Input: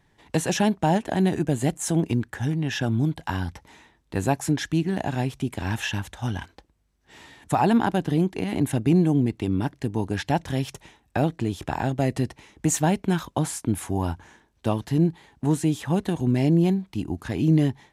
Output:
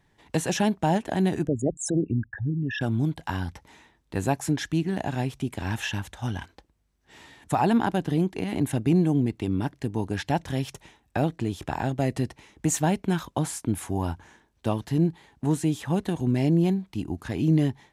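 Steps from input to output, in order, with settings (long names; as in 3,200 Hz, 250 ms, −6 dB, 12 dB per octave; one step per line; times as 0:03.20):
0:01.47–0:02.81: spectral envelope exaggerated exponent 3
level −2 dB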